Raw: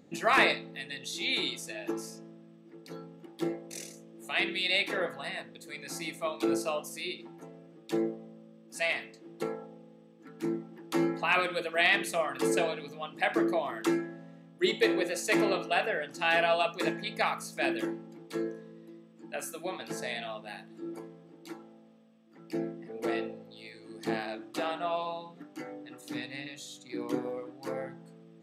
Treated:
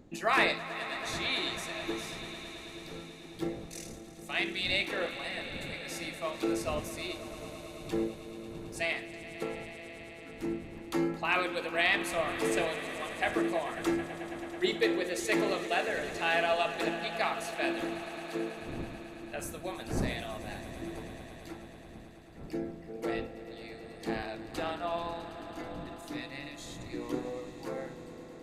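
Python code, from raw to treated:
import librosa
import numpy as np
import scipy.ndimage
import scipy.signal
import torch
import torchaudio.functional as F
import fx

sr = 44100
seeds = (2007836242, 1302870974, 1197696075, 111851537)

y = fx.dmg_wind(x, sr, seeds[0], corner_hz=280.0, level_db=-46.0)
y = fx.echo_swell(y, sr, ms=109, loudest=5, wet_db=-16.5)
y = y * librosa.db_to_amplitude(-2.5)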